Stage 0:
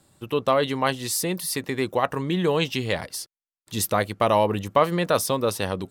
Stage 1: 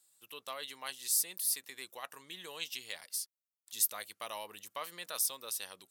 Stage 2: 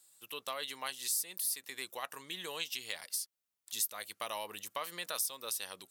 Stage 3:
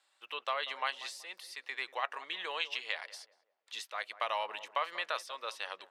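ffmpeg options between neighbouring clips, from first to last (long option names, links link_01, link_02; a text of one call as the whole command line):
ffmpeg -i in.wav -af "aderivative,volume=-4.5dB" out.wav
ffmpeg -i in.wav -af "acompressor=threshold=-40dB:ratio=2.5,volume=5dB" out.wav
ffmpeg -i in.wav -filter_complex "[0:a]asuperpass=centerf=1300:order=4:qfactor=0.57,asplit=2[link_01][link_02];[link_02]adelay=189,lowpass=frequency=810:poles=1,volume=-13dB,asplit=2[link_03][link_04];[link_04]adelay=189,lowpass=frequency=810:poles=1,volume=0.43,asplit=2[link_05][link_06];[link_06]adelay=189,lowpass=frequency=810:poles=1,volume=0.43,asplit=2[link_07][link_08];[link_08]adelay=189,lowpass=frequency=810:poles=1,volume=0.43[link_09];[link_01][link_03][link_05][link_07][link_09]amix=inputs=5:normalize=0,volume=7dB" out.wav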